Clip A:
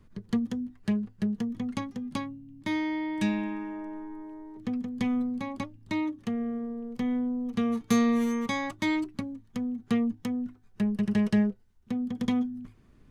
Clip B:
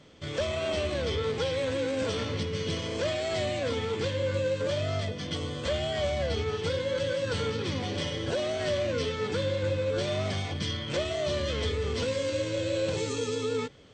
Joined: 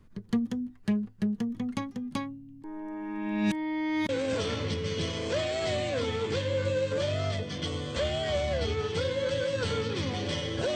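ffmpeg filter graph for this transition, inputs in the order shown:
-filter_complex "[0:a]apad=whole_dur=10.75,atrim=end=10.75,asplit=2[s0][s1];[s0]atrim=end=2.642[s2];[s1]atrim=start=2.638:end=4.092,asetpts=PTS-STARTPTS,areverse[s3];[1:a]atrim=start=1.778:end=8.44[s4];[s2][s3]acrossfade=d=0.004:c1=hsin:c2=hsin[s5];[s5][s4]acrossfade=d=0.004:c1=hsin:c2=hsin"

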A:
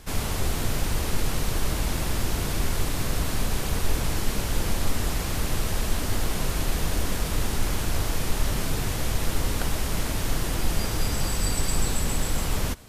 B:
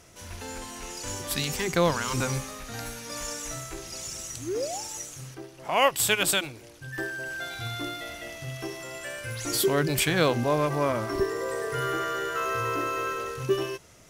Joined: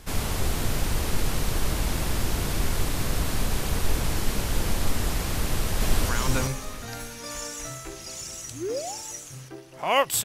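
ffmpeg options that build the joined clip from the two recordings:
-filter_complex "[0:a]apad=whole_dur=10.24,atrim=end=10.24,atrim=end=6.092[s0];[1:a]atrim=start=1.948:end=6.1[s1];[s0][s1]acrossfade=d=0.004:c1=hsin:c2=hsin,asplit=2[s2][s3];[s3]afade=t=in:st=5.42:d=0.01,afade=t=out:st=6.09:d=0.01,aecho=0:1:380|760|1140|1520:0.841395|0.210349|0.0525872|0.0131468[s4];[s2][s4]amix=inputs=2:normalize=0"

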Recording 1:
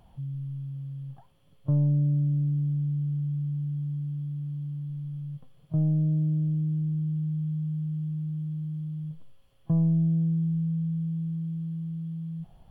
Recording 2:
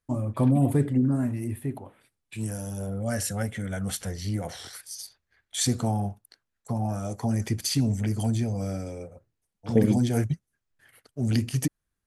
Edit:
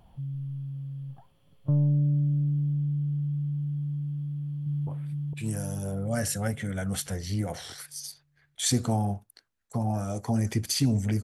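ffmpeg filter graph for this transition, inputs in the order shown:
-filter_complex "[0:a]apad=whole_dur=11.23,atrim=end=11.23,atrim=end=4.872[s0];[1:a]atrim=start=1.818:end=8.18[s1];[s0][s1]acrossfade=d=0.004:c1=hsin:c2=hsin,asplit=2[s2][s3];[s3]afade=t=in:st=4.2:d=0.01,afade=t=out:st=4.87:d=0.01,aecho=0:1:460|920|1380|1840|2300|2760|3220|3680:0.891251|0.490188|0.269603|0.148282|0.081555|0.0448553|0.0246704|0.0135687[s4];[s2][s4]amix=inputs=2:normalize=0"

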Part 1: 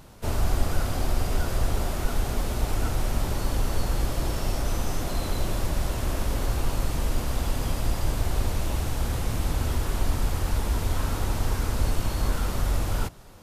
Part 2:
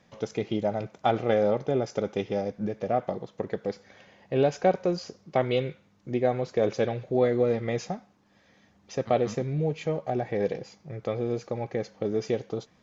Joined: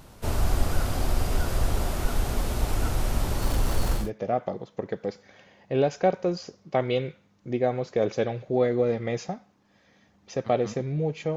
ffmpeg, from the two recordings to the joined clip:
-filter_complex "[0:a]asettb=1/sr,asplit=3[s0][s1][s2];[s0]atrim=end=3.424[s3];[s1]atrim=start=3.42:end=4.11,asetpts=PTS-STARTPTS,afade=t=in:d=0.004:c=qsin,afade=t=out:st=0.686:d=0.004:c=qsin,aeval=exprs='val(0)+0.5*0.0188*sgn(val(0))':c=same[s4];[s2]atrim=start=4.106[s5];[s3][s4]acrossfade=d=0.004:c1=hsin:c2=qsin[s6];[s6][s5]acrossfade=d=0.004:c1=qsin:c2=hsin,apad=whole_dur=11.36,atrim=end=11.36,atrim=end=4.11,asetpts=PTS-STARTPTS[s7];[1:a]atrim=start=2.54:end=9.97,asetpts=PTS-STARTPTS[s8];[s7][s8]acrossfade=d=0.18:c1=tri:c2=tri"

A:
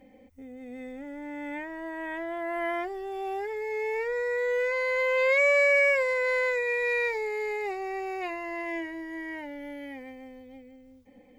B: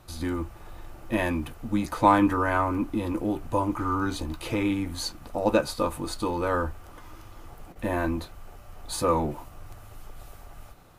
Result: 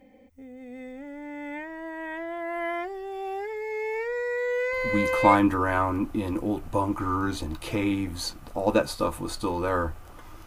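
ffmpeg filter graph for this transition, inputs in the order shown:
-filter_complex "[0:a]apad=whole_dur=10.46,atrim=end=10.46,atrim=end=5.35,asetpts=PTS-STARTPTS[s0];[1:a]atrim=start=1.52:end=7.25,asetpts=PTS-STARTPTS[s1];[s0][s1]acrossfade=d=0.62:c1=log:c2=log"

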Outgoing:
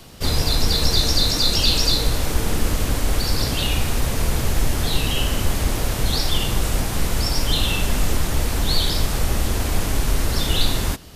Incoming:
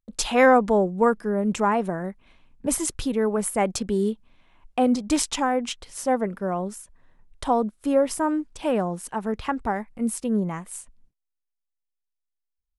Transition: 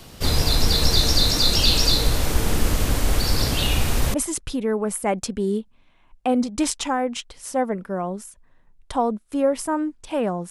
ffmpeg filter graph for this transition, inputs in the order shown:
-filter_complex "[0:a]apad=whole_dur=10.5,atrim=end=10.5,atrim=end=4.142[s0];[1:a]atrim=start=2.658:end=9.02[s1];[s0][s1]acrossfade=d=0.004:c1=hsin:c2=hsin"

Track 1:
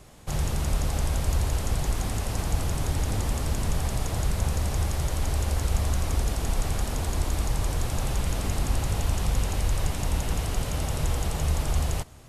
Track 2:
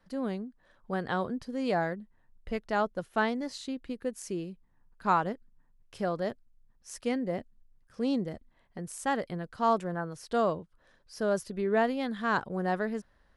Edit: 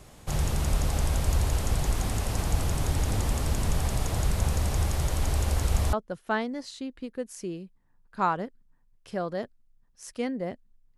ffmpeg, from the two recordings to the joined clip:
-filter_complex "[0:a]apad=whole_dur=10.97,atrim=end=10.97,atrim=end=5.932[s0];[1:a]atrim=start=2.798:end=7.84[s1];[s0][s1]acrossfade=d=0.004:c1=hsin:c2=hsin"

